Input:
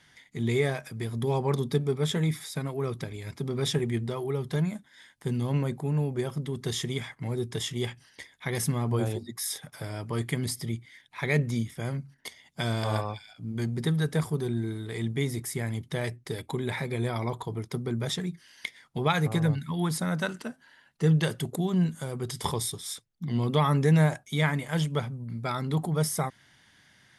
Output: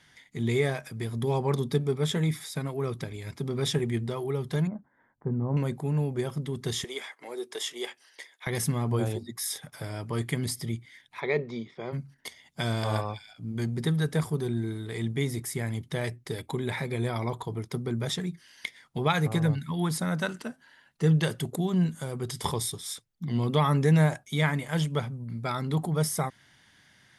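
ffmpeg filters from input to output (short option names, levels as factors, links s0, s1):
-filter_complex "[0:a]asettb=1/sr,asplit=3[s0][s1][s2];[s0]atrim=end=4.674[s3];[s1]atrim=start=4.67:end=5.57,asetpts=PTS-STARTPTS,afade=t=in:d=0.004:c=qsin,afade=t=out:st=0.896:d=0.004:c=qsin,lowpass=f=1200:w=0.5412,lowpass=f=1200:w=1.3066[s4];[s2]atrim=start=5.566[s5];[s3][s4]acrossfade=d=0.004:c1=hsin:c2=qsin[s6];[s6][s5]acrossfade=d=0.004:c1=qsin:c2=hsin,asettb=1/sr,asplit=3[s7][s8][s9];[s7]atrim=end=6.844[s10];[s8]atrim=start=6.84:end=8.47,asetpts=PTS-STARTPTS,afade=t=in:d=0.004:c=qsin,afade=t=out:st=1.626:d=0.004:c=qsin,highpass=f=370:w=0.5412,highpass=f=370:w=1.3066[s11];[s9]atrim=start=8.466[s12];[s10][s11]acrossfade=d=0.004:c1=hsin:c2=qsin[s13];[s13][s12]acrossfade=d=0.004:c1=qsin:c2=hsin,asplit=3[s14][s15][s16];[s14]afade=t=out:st=11.19:d=0.02[s17];[s15]highpass=270,equalizer=f=280:t=q:w=4:g=-5,equalizer=f=400:t=q:w=4:g=7,equalizer=f=1000:t=q:w=4:g=3,equalizer=f=1600:t=q:w=4:g=-8,equalizer=f=2900:t=q:w=4:g=-8,lowpass=f=4200:w=0.5412,lowpass=f=4200:w=1.3066,afade=t=in:st=11.19:d=0.02,afade=t=out:st=11.92:d=0.02[s18];[s16]afade=t=in:st=11.92:d=0.02[s19];[s17][s18][s19]amix=inputs=3:normalize=0"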